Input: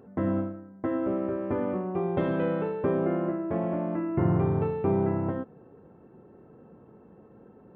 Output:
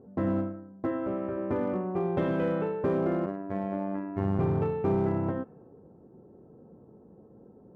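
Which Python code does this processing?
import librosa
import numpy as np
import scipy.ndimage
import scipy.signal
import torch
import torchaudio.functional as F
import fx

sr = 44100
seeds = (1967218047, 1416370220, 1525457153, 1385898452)

p1 = fx.env_lowpass(x, sr, base_hz=650.0, full_db=-21.0)
p2 = fx.peak_eq(p1, sr, hz=310.0, db=-4.0, octaves=1.6, at=(0.91, 1.37))
p3 = 10.0 ** (-23.0 / 20.0) * (np.abs((p2 / 10.0 ** (-23.0 / 20.0) + 3.0) % 4.0 - 2.0) - 1.0)
p4 = p2 + (p3 * 10.0 ** (-11.0 / 20.0))
p5 = fx.robotise(p4, sr, hz=97.8, at=(3.26, 4.39))
y = p5 * 10.0 ** (-2.5 / 20.0)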